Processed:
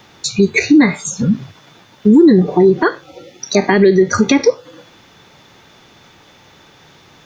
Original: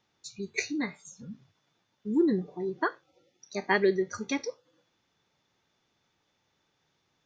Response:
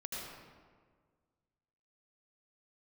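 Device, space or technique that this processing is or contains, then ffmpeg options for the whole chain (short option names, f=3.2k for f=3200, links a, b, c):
mastering chain: -filter_complex "[0:a]equalizer=f=5.7k:t=o:w=0.82:g=-3.5,acrossover=split=380|2700[a][b][c];[a]acompressor=threshold=-30dB:ratio=4[d];[b]acompressor=threshold=-37dB:ratio=4[e];[c]acompressor=threshold=-49dB:ratio=4[f];[d][e][f]amix=inputs=3:normalize=0,acompressor=threshold=-40dB:ratio=1.5,alimiter=level_in=30.5dB:limit=-1dB:release=50:level=0:latency=1,volume=-1dB"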